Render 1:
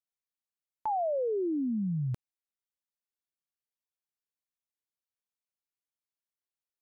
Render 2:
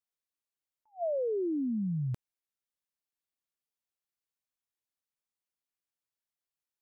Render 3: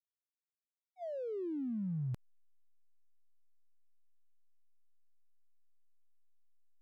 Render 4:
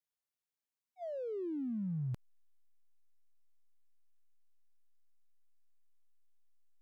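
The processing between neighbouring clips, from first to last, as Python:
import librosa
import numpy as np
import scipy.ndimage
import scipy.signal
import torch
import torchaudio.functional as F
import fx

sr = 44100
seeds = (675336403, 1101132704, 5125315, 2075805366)

y1 = fx.attack_slew(x, sr, db_per_s=350.0)
y1 = y1 * librosa.db_to_amplitude(-1.0)
y2 = fx.fade_in_head(y1, sr, length_s=2.23)
y2 = fx.backlash(y2, sr, play_db=-53.0)
y2 = y2 * librosa.db_to_amplitude(-3.5)
y3 = fx.tracing_dist(y2, sr, depth_ms=0.025)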